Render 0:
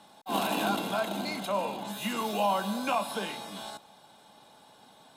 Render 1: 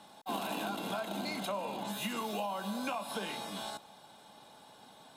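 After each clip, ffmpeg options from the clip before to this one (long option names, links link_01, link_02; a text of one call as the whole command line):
ffmpeg -i in.wav -af "acompressor=threshold=-33dB:ratio=10" out.wav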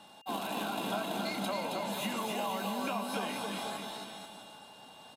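ffmpeg -i in.wav -af "aeval=exprs='val(0)+0.001*sin(2*PI*2800*n/s)':channel_layout=same,aecho=1:1:270|486|658.8|797|907.6:0.631|0.398|0.251|0.158|0.1" out.wav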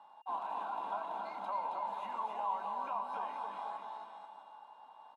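ffmpeg -i in.wav -af "bandpass=frequency=950:width_type=q:width=5.3:csg=0,volume=5dB" out.wav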